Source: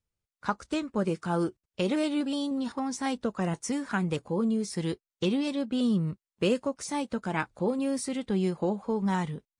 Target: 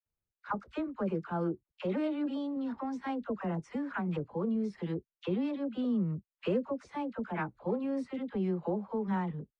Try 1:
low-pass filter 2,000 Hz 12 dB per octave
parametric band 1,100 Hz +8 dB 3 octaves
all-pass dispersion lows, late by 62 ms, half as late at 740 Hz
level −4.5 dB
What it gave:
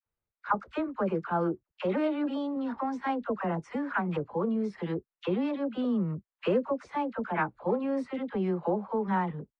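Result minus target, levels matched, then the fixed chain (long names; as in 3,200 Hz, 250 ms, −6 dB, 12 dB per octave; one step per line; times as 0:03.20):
1,000 Hz band +4.0 dB
low-pass filter 2,000 Hz 12 dB per octave
all-pass dispersion lows, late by 62 ms, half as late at 740 Hz
level −4.5 dB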